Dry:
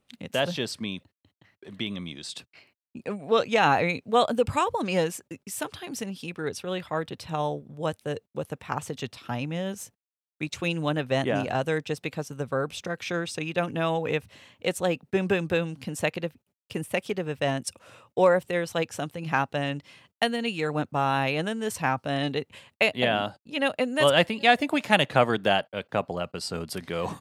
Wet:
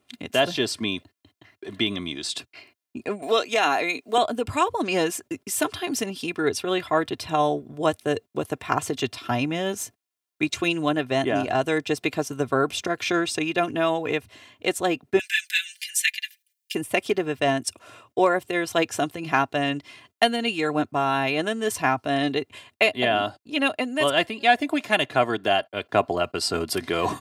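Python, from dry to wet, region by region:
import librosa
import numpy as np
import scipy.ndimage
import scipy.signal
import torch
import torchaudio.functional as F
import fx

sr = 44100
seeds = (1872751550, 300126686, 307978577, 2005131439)

y = fx.chain(x, sr, fx.highpass(hz=270.0, slope=12),
    fx.high_shelf(hz=4500.0, db=10.0),
    fx.band_squash(depth_pct=40), at=(3.22, 4.18))
y = fx.chain(y, sr, fx.steep_highpass(hz=1600.0, slope=96),
    fx.tilt_eq(slope=2.5),
    fx.comb(ms=4.6, depth=0.93), at=(15.19, 16.75))
y = scipy.signal.sosfilt(scipy.signal.butter(2, 88.0, 'highpass', fs=sr, output='sos'), y)
y = y + 0.6 * np.pad(y, (int(2.9 * sr / 1000.0), 0))[:len(y)]
y = fx.rider(y, sr, range_db=4, speed_s=0.5)
y = y * librosa.db_to_amplitude(2.5)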